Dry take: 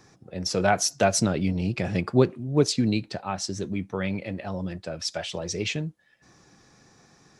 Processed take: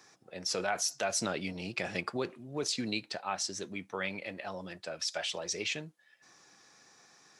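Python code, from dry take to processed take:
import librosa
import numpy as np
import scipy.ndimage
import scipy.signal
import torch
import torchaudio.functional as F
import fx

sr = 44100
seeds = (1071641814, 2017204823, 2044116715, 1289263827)

p1 = fx.highpass(x, sr, hz=1000.0, slope=6)
p2 = fx.over_compress(p1, sr, threshold_db=-32.0, ratio=-0.5)
p3 = p1 + F.gain(torch.from_numpy(p2), 0.0).numpy()
y = F.gain(torch.from_numpy(p3), -7.5).numpy()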